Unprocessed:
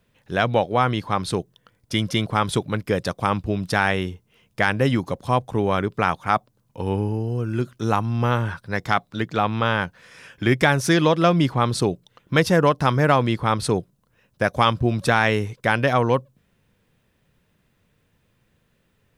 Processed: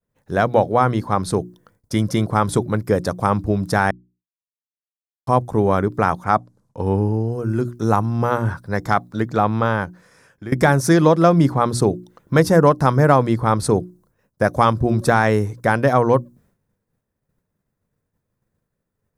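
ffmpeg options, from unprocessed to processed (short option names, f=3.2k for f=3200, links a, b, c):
-filter_complex "[0:a]asettb=1/sr,asplit=3[a][b][c];[a]atrim=end=6.244[d];[b]atrim=start=6.24:end=7.33,asetpts=PTS-STARTPTS,afade=t=in:d=0.004:c=qsin,afade=t=out:st=1.086:d=0.004:c=qsin,lowpass=8.5k[e];[c]atrim=start=7.326[f];[d][e]acrossfade=d=0.004:c1=hsin:c2=qsin[g];[g][f]acrossfade=d=0.004:c1=qsin:c2=hsin,asplit=4[h][i][j][k];[h]atrim=end=3.91,asetpts=PTS-STARTPTS,afade=t=out:st=3.906:d=0.004:c=hsin[l];[i]atrim=start=3.91:end=5.27,asetpts=PTS-STARTPTS,volume=0[m];[j]atrim=start=5.27:end=10.52,asetpts=PTS-STARTPTS,afade=t=in:d=0.004:c=hsin,afade=t=out:st=4.29:d=0.96:silence=0.158489[n];[k]atrim=start=10.52,asetpts=PTS-STARTPTS,afade=t=in:d=0.004:c=hsin:silence=0.158489[o];[l][m][n][o]concat=n=4:v=0:a=1,bandreject=f=60:t=h:w=6,bandreject=f=120:t=h:w=6,bandreject=f=180:t=h:w=6,bandreject=f=240:t=h:w=6,bandreject=f=300:t=h:w=6,bandreject=f=360:t=h:w=6,agate=range=-33dB:threshold=-55dB:ratio=3:detection=peak,equalizer=f=2.9k:w=1.2:g=-15,volume=5dB"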